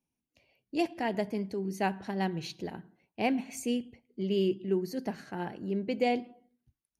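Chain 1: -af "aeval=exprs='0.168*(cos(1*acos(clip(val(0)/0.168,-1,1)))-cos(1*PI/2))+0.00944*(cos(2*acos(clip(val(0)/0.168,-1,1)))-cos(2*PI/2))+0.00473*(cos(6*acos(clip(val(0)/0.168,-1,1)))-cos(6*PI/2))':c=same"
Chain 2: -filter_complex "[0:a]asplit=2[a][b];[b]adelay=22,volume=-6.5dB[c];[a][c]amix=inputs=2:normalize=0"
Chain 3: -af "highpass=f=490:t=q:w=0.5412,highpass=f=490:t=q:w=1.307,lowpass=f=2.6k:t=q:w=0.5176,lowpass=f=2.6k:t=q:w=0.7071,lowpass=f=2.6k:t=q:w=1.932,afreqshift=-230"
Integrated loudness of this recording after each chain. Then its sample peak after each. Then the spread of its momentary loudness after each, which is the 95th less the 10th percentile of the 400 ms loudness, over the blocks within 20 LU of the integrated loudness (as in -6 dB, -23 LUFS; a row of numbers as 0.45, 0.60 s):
-33.0, -32.0, -38.5 LUFS; -16.0, -14.5, -19.5 dBFS; 11, 11, 14 LU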